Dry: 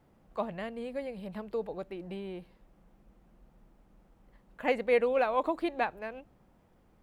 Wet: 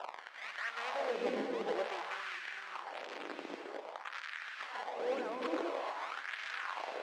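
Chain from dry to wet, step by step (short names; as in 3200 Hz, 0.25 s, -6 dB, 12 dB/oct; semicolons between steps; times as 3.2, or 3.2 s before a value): switching spikes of -27.5 dBFS; bell 1700 Hz +8 dB 1.9 oct; notch 530 Hz, Q 12; negative-ratio compressor -35 dBFS, ratio -1; one-sided clip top -36.5 dBFS, bottom -26 dBFS; decimation with a swept rate 20×, swing 160% 0.89 Hz; BPF 220–3700 Hz; non-linear reverb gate 0.48 s rising, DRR 2 dB; LFO high-pass sine 0.51 Hz 300–1700 Hz; gain -3 dB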